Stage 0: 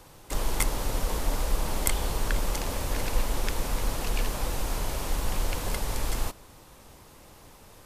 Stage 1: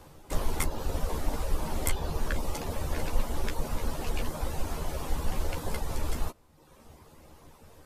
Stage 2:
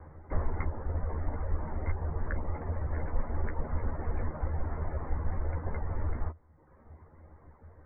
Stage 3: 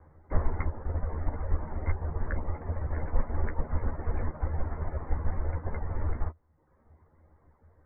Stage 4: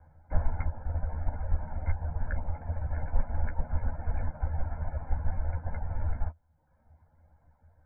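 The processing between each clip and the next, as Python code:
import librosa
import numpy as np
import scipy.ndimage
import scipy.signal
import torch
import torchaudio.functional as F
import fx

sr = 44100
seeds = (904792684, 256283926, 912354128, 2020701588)

y1 = fx.dereverb_blind(x, sr, rt60_s=1.0)
y1 = fx.tilt_shelf(y1, sr, db=3.5, hz=1300.0)
y1 = fx.doubler(y1, sr, ms=13.0, db=-4.5)
y1 = F.gain(torch.from_numpy(y1), -2.5).numpy()
y2 = scipy.signal.sosfilt(scipy.signal.butter(16, 2100.0, 'lowpass', fs=sr, output='sos'), y1)
y2 = fx.peak_eq(y2, sr, hz=81.0, db=12.0, octaves=0.41)
y2 = fx.rider(y2, sr, range_db=10, speed_s=0.5)
y2 = F.gain(torch.from_numpy(y2), -4.0).numpy()
y3 = fx.upward_expand(y2, sr, threshold_db=-46.0, expansion=1.5)
y3 = F.gain(torch.from_numpy(y3), 5.0).numpy()
y4 = y3 + 0.81 * np.pad(y3, (int(1.3 * sr / 1000.0), 0))[:len(y3)]
y4 = F.gain(torch.from_numpy(y4), -5.0).numpy()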